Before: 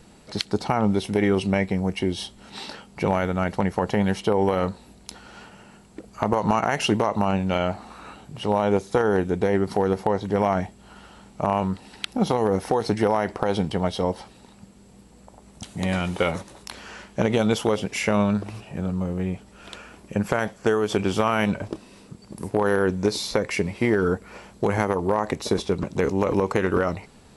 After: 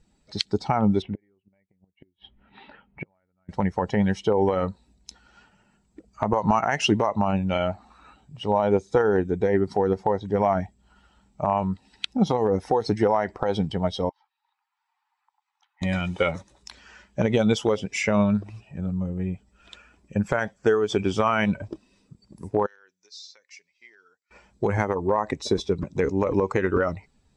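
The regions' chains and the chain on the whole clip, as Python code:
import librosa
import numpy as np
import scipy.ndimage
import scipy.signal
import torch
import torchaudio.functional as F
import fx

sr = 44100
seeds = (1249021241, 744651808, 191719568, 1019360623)

y = fx.chain(x, sr, fx.lowpass(hz=2800.0, slope=24),
    fx.gate_flip(shuts_db=-16.0, range_db=-31), at=(1.02, 3.49))
y = fx.chain(y, sr, fx.steep_highpass(hz=810.0, slope=72),
    fx.spacing_loss(db_at_10k=29),
    fx.band_squash(depth_pct=70), at=(14.09, 15.82))
y = fx.chain(y, sr, fx.bandpass_q(hz=6800.0, q=1.5),
    fx.air_absorb(metres=120.0), at=(22.66, 24.31))
y = fx.bin_expand(y, sr, power=1.5)
y = scipy.signal.sosfilt(scipy.signal.butter(4, 7400.0, 'lowpass', fs=sr, output='sos'), y)
y = y * librosa.db_to_amplitude(3.0)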